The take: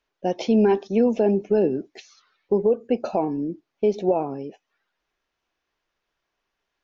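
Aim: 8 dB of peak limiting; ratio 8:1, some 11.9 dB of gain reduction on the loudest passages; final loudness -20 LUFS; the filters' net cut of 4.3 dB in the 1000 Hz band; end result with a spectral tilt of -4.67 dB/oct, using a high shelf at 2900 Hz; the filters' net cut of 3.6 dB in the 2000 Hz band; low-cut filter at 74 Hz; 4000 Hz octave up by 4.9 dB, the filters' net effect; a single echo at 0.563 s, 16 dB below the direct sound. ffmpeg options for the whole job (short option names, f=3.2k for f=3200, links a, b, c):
-af "highpass=74,equalizer=f=1k:t=o:g=-6,equalizer=f=2k:t=o:g=-7,highshelf=f=2.9k:g=3.5,equalizer=f=4k:t=o:g=6.5,acompressor=threshold=-28dB:ratio=8,alimiter=level_in=1dB:limit=-24dB:level=0:latency=1,volume=-1dB,aecho=1:1:563:0.158,volume=15.5dB"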